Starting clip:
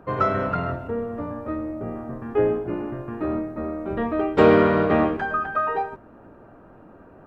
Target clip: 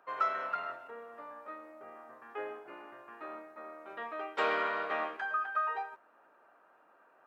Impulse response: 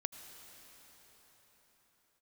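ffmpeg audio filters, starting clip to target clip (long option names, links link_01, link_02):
-af "highpass=1000,volume=-6.5dB"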